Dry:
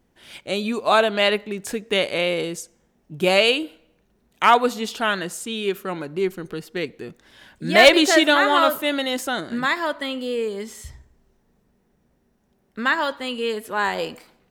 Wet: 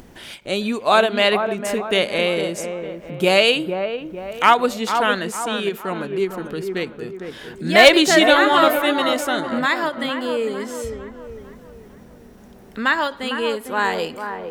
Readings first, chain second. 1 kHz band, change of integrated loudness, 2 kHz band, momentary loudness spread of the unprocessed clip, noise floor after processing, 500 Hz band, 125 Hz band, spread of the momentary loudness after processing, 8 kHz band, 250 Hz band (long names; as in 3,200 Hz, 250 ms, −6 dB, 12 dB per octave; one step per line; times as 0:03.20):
+2.5 dB, +2.0 dB, +2.0 dB, 16 LU, −44 dBFS, +2.5 dB, +3.0 dB, 18 LU, +2.0 dB, +2.5 dB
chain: upward compression, threshold −32 dBFS
delay with a low-pass on its return 453 ms, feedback 43%, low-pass 1,500 Hz, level −7 dB
every ending faded ahead of time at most 250 dB per second
level +2 dB